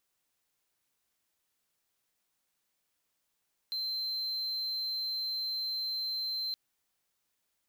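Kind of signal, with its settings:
tone triangle 4,110 Hz −30 dBFS 2.82 s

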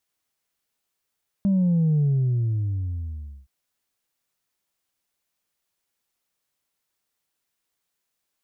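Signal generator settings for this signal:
bass drop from 200 Hz, over 2.02 s, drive 1 dB, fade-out 1.47 s, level −17.5 dB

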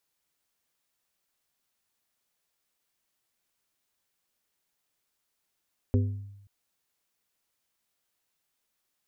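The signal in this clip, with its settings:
struck glass plate, length 0.53 s, lowest mode 100 Hz, modes 4, decay 0.90 s, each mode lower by 5 dB, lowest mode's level −19 dB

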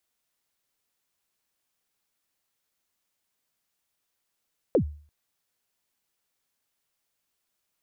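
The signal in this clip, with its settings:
synth kick length 0.34 s, from 590 Hz, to 74 Hz, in 90 ms, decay 0.44 s, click off, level −14.5 dB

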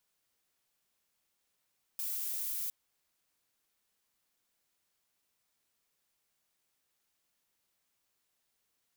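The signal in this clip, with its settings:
noise violet, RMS −36.5 dBFS 0.71 s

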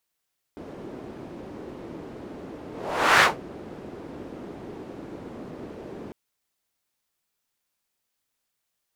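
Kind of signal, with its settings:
pass-by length 5.55 s, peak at 0:02.65, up 0.55 s, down 0.17 s, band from 330 Hz, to 1,600 Hz, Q 1.4, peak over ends 23 dB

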